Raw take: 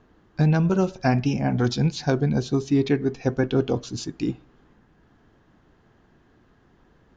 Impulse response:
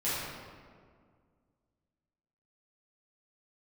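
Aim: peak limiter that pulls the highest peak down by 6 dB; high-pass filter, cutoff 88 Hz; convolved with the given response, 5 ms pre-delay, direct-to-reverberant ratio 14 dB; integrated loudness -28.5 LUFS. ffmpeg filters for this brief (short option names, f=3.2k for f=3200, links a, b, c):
-filter_complex "[0:a]highpass=88,alimiter=limit=-14.5dB:level=0:latency=1,asplit=2[a][b];[1:a]atrim=start_sample=2205,adelay=5[c];[b][c]afir=irnorm=-1:irlink=0,volume=-22.5dB[d];[a][d]amix=inputs=2:normalize=0,volume=-3.5dB"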